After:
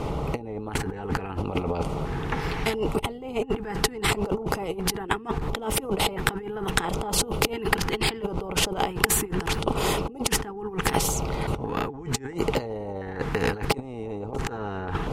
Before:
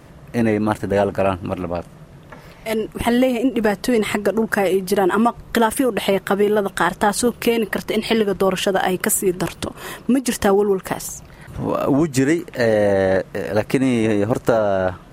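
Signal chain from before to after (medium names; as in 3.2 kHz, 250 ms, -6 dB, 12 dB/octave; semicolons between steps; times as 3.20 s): RIAA curve playback; compressor with a negative ratio -22 dBFS, ratio -0.5; LFO notch square 0.73 Hz 590–1700 Hz; small resonant body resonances 440/820 Hz, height 17 dB, ringing for 70 ms; spectrum-flattening compressor 2:1; trim -3 dB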